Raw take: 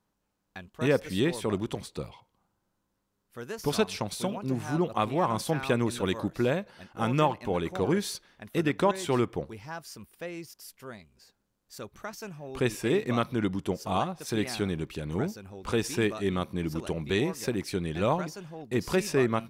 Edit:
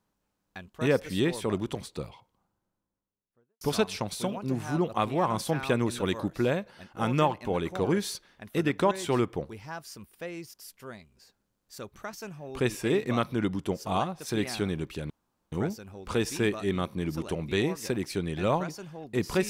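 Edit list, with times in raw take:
2.04–3.61 studio fade out
15.1 insert room tone 0.42 s

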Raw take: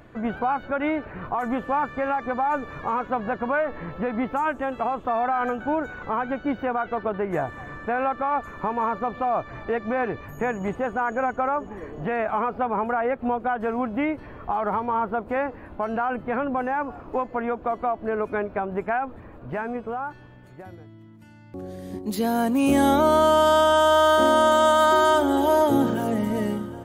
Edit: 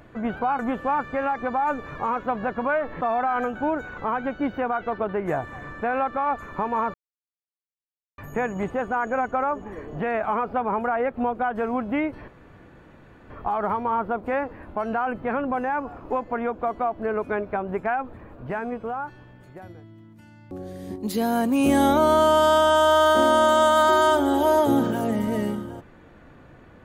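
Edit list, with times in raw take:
0.59–1.43 cut
3.85–5.06 cut
8.99–10.23 mute
14.33 insert room tone 1.02 s

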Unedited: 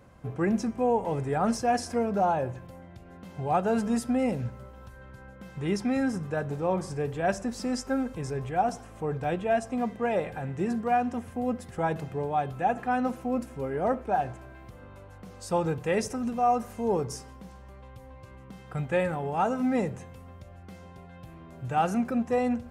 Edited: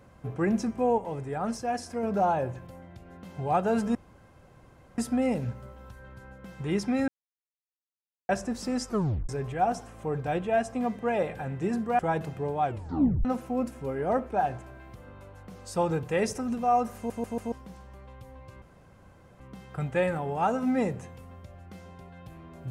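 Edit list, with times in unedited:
0.98–2.03 gain -5 dB
3.95 insert room tone 1.03 s
6.05–7.26 mute
7.85 tape stop 0.41 s
10.96–11.74 cut
12.39 tape stop 0.61 s
16.71 stutter in place 0.14 s, 4 plays
18.37 insert room tone 0.78 s

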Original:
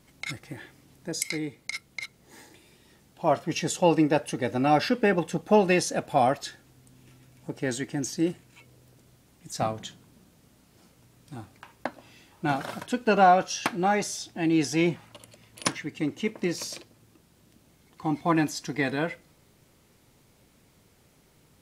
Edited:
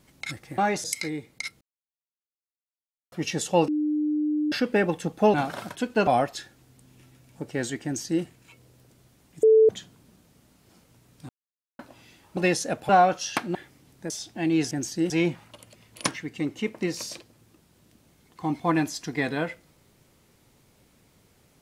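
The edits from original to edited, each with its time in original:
0.58–1.13 swap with 13.84–14.1
1.9–3.41 mute
3.97–4.81 bleep 301 Hz -22 dBFS
5.63–6.15 swap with 12.45–13.18
7.92–8.31 copy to 14.71
9.51–9.77 bleep 440 Hz -12.5 dBFS
11.37–11.87 mute

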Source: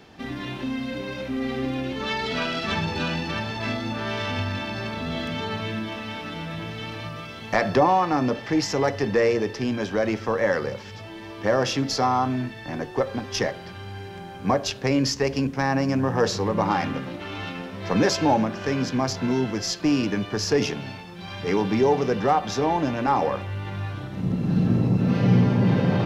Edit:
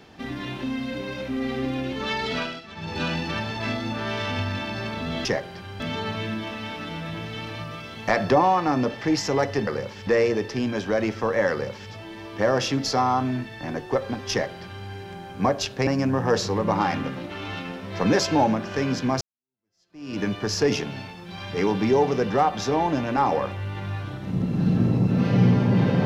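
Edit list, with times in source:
2.35–3.03 dip -16 dB, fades 0.28 s
10.56–10.96 copy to 9.12
13.36–13.91 copy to 5.25
14.92–15.77 cut
19.11–20.1 fade in exponential

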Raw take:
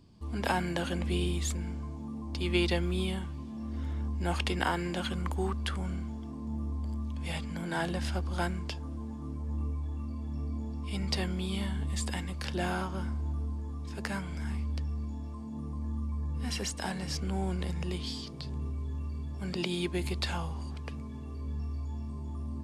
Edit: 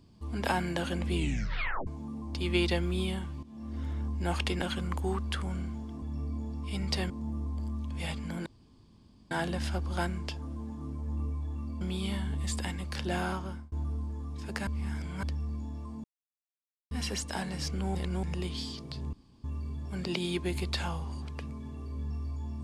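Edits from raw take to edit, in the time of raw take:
1.14 tape stop 0.73 s
3.43–3.91 fade in equal-power, from -12.5 dB
4.62–4.96 cut
7.72 insert room tone 0.85 s
10.22–11.3 move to 6.36
12.87–13.21 fade out
14.16–14.72 reverse
15.53–16.4 mute
17.44–17.72 reverse
18.62–18.93 room tone

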